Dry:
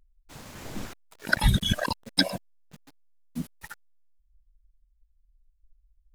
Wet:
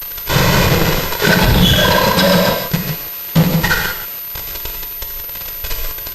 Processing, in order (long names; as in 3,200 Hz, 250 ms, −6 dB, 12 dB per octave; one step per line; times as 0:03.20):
mu-law and A-law mismatch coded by A
parametric band 180 Hz +7 dB 0.6 octaves
on a send: feedback echo with a high-pass in the loop 131 ms, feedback 16%, high-pass 390 Hz, level −16 dB
on the sum: harmonic and percussive parts rebalanced harmonic +5 dB
in parallel at −12 dB: bit-depth reduction 8 bits, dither triangular
on the sum: downward compressor, threshold −31 dBFS, peak gain reduction 19 dB
comb filter 2 ms, depth 88%
fuzz pedal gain 49 dB, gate −49 dBFS
reverb whose tail is shaped and stops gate 210 ms flat, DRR 0.5 dB
boost into a limiter +6 dB
switching amplifier with a slow clock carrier 13,000 Hz
level −1 dB